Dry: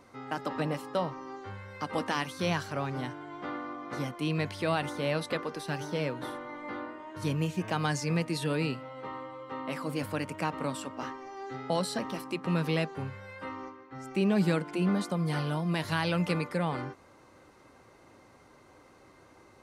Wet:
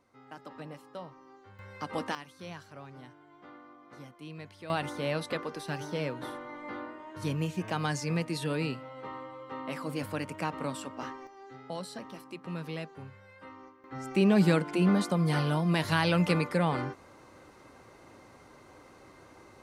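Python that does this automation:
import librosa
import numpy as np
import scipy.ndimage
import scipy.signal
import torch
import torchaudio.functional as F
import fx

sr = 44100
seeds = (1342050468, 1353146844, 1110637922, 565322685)

y = fx.gain(x, sr, db=fx.steps((0.0, -12.5), (1.59, -2.5), (2.15, -14.0), (4.7, -1.5), (11.27, -9.0), (13.84, 3.0)))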